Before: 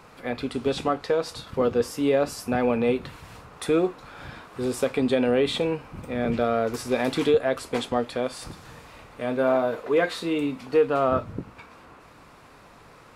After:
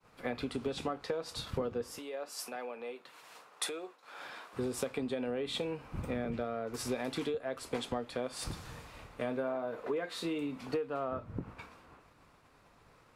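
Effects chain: compressor 16:1, threshold -32 dBFS, peak gain reduction 18 dB; 1.98–4.53 HPF 490 Hz 12 dB/oct; expander -45 dBFS; three-band expander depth 40%

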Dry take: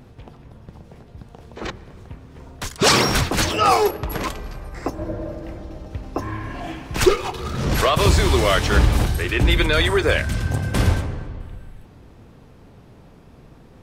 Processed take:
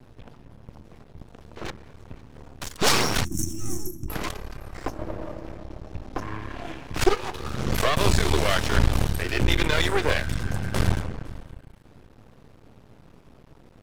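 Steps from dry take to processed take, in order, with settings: half-wave rectifier; 5.32–7.28 high shelf 10000 Hz -5 dB; thinning echo 0.508 s, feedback 17%, level -23.5 dB; 3.25–4.09 spectral gain 380–5400 Hz -28 dB; gain -1 dB

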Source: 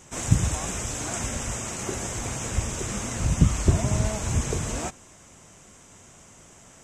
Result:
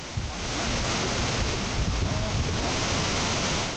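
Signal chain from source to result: delta modulation 32 kbps, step -20.5 dBFS; bell 1700 Hz -2.5 dB 0.32 oct; time stretch by phase-locked vocoder 0.55×; AGC gain up to 14 dB; limiter -10.5 dBFS, peak gain reduction 9.5 dB; on a send: diffused feedback echo 0.535 s, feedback 44%, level -10 dB; on the sum: gain -7 dB

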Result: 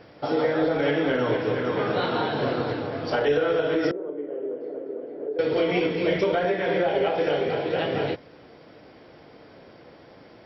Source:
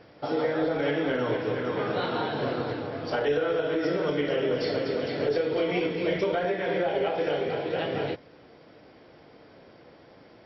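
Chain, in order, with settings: 3.91–5.39 ladder band-pass 420 Hz, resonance 45%; gain +3.5 dB

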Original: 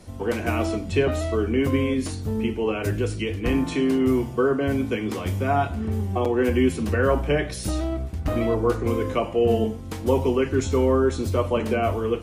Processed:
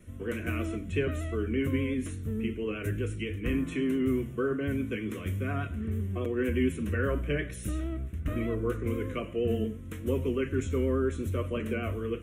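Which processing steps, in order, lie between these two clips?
vibrato 8.4 Hz 38 cents; fixed phaser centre 2000 Hz, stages 4; gain -5.5 dB

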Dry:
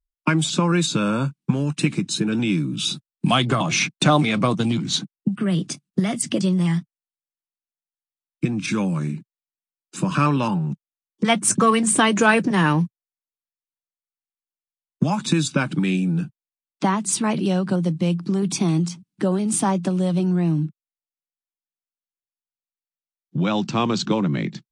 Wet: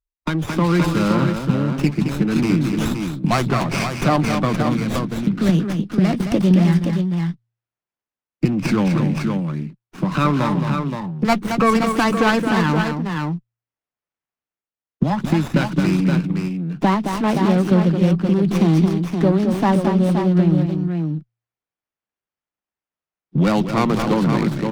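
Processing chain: polynomial smoothing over 15 samples; de-hum 58.29 Hz, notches 2; on a send: tapped delay 0.219/0.522 s -7/-6.5 dB; on the sum: AGC; running maximum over 9 samples; gain -3 dB

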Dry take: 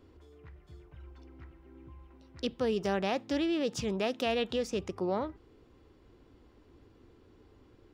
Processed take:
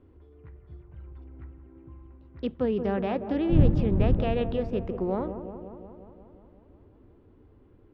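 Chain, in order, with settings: 3.49–4.21 wind noise 130 Hz -29 dBFS; low shelf 400 Hz +5.5 dB; in parallel at -8.5 dB: crossover distortion -46 dBFS; on the sum: air absorption 420 m; dark delay 0.179 s, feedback 69%, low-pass 1200 Hz, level -9.5 dB; gain -1.5 dB

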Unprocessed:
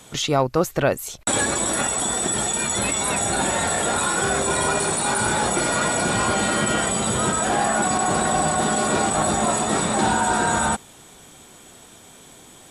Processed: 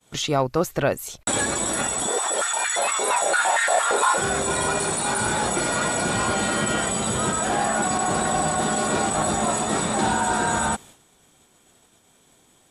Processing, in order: expander -38 dBFS; 2.07–4.18 stepped high-pass 8.7 Hz 440–1700 Hz; gain -2 dB

